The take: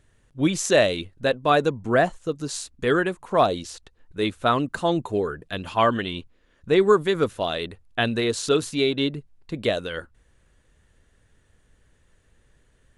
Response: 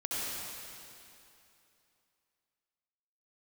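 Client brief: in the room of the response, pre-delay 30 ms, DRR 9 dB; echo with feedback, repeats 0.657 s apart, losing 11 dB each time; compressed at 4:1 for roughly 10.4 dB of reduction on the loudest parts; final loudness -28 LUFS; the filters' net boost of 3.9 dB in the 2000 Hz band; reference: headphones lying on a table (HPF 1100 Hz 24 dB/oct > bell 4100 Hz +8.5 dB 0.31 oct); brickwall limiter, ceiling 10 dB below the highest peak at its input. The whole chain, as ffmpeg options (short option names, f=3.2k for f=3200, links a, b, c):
-filter_complex "[0:a]equalizer=f=2k:t=o:g=5,acompressor=threshold=-25dB:ratio=4,alimiter=limit=-19dB:level=0:latency=1,aecho=1:1:657|1314|1971:0.282|0.0789|0.0221,asplit=2[a][b];[1:a]atrim=start_sample=2205,adelay=30[c];[b][c]afir=irnorm=-1:irlink=0,volume=-15dB[d];[a][d]amix=inputs=2:normalize=0,highpass=f=1.1k:w=0.5412,highpass=f=1.1k:w=1.3066,equalizer=f=4.1k:t=o:w=0.31:g=8.5,volume=5.5dB"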